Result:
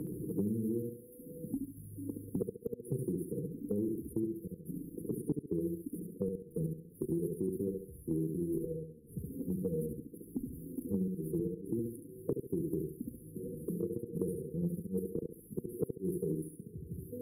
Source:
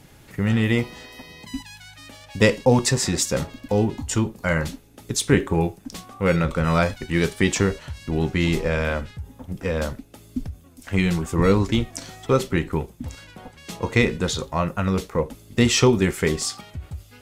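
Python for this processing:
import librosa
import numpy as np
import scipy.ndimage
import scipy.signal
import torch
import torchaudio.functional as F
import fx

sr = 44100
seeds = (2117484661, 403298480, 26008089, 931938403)

y = fx.spec_quant(x, sr, step_db=15)
y = fx.highpass(y, sr, hz=270.0, slope=6)
y = fx.low_shelf(y, sr, hz=370.0, db=-3.5)
y = y + 0.39 * np.pad(y, (int(5.9 * sr / 1000.0), 0))[:len(y)]
y = fx.dynamic_eq(y, sr, hz=7800.0, q=0.97, threshold_db=-41.0, ratio=4.0, max_db=-5)
y = fx.level_steps(y, sr, step_db=10)
y = fx.gate_flip(y, sr, shuts_db=-17.0, range_db=-28)
y = fx.tremolo_shape(y, sr, shape='saw_down', hz=0.57, depth_pct=45)
y = fx.brickwall_bandstop(y, sr, low_hz=490.0, high_hz=9500.0)
y = fx.echo_feedback(y, sr, ms=69, feedback_pct=29, wet_db=-3.5)
y = fx.band_squash(y, sr, depth_pct=100)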